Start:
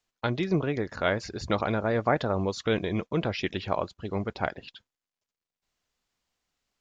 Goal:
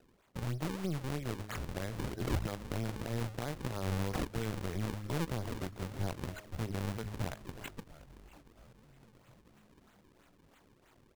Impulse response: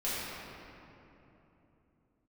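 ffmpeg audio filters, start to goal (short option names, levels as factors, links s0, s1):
-filter_complex "[0:a]lowshelf=f=120:g=9.5,bandreject=f=104.6:t=h:w=4,bandreject=f=209.2:t=h:w=4,bandreject=f=313.8:t=h:w=4,bandreject=f=418.4:t=h:w=4,bandreject=f=523:t=h:w=4,bandreject=f=627.6:t=h:w=4,asplit=2[s0][s1];[s1]acompressor=threshold=0.0178:ratio=12,volume=1.26[s2];[s0][s2]amix=inputs=2:normalize=0,alimiter=limit=0.106:level=0:latency=1:release=299,acrossover=split=160|3000[s3][s4][s5];[s4]acompressor=threshold=0.0158:ratio=2.5[s6];[s3][s6][s5]amix=inputs=3:normalize=0,asoftclip=type=tanh:threshold=0.075,asplit=7[s7][s8][s9][s10][s11][s12][s13];[s8]adelay=421,afreqshift=-78,volume=0.2[s14];[s9]adelay=842,afreqshift=-156,volume=0.117[s15];[s10]adelay=1263,afreqshift=-234,volume=0.0692[s16];[s11]adelay=1684,afreqshift=-312,volume=0.0412[s17];[s12]adelay=2105,afreqshift=-390,volume=0.0243[s18];[s13]adelay=2526,afreqshift=-468,volume=0.0143[s19];[s7][s14][s15][s16][s17][s18][s19]amix=inputs=7:normalize=0,aexciter=amount=14.8:drive=3:freq=6400,atempo=0.61,acrusher=samples=38:mix=1:aa=0.000001:lfo=1:lforange=60.8:lforate=3.1,aeval=exprs='0.0891*(cos(1*acos(clip(val(0)/0.0891,-1,1)))-cos(1*PI/2))+0.0126*(cos(4*acos(clip(val(0)/0.0891,-1,1)))-cos(4*PI/2))+0.00282*(cos(7*acos(clip(val(0)/0.0891,-1,1)))-cos(7*PI/2))':c=same,volume=0.708"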